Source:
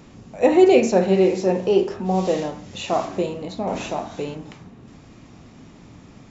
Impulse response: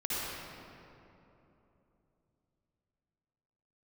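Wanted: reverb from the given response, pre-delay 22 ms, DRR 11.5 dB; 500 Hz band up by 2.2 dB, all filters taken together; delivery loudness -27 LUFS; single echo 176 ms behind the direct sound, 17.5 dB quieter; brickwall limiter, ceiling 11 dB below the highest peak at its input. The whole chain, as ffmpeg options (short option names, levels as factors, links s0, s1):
-filter_complex "[0:a]equalizer=f=500:t=o:g=3,alimiter=limit=0.237:level=0:latency=1,aecho=1:1:176:0.133,asplit=2[s0][s1];[1:a]atrim=start_sample=2205,adelay=22[s2];[s1][s2]afir=irnorm=-1:irlink=0,volume=0.119[s3];[s0][s3]amix=inputs=2:normalize=0,volume=0.631"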